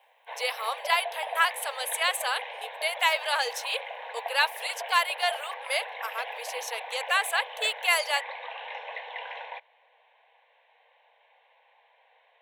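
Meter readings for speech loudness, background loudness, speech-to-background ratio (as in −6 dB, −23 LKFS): −28.0 LKFS, −38.0 LKFS, 10.0 dB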